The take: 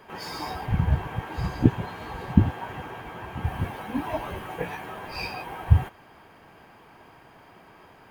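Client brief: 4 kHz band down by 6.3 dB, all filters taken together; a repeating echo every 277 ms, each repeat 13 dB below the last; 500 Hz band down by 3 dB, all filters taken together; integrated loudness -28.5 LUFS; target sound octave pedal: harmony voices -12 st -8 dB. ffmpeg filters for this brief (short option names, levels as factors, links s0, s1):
-filter_complex "[0:a]equalizer=f=500:t=o:g=-4,equalizer=f=4000:t=o:g=-8.5,aecho=1:1:277|554|831:0.224|0.0493|0.0108,asplit=2[s0][s1];[s1]asetrate=22050,aresample=44100,atempo=2,volume=0.398[s2];[s0][s2]amix=inputs=2:normalize=0"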